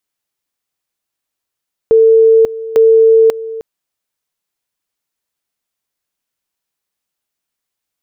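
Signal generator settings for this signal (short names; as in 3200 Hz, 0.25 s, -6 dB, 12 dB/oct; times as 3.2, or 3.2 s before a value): two-level tone 448 Hz -4 dBFS, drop 16.5 dB, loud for 0.54 s, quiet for 0.31 s, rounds 2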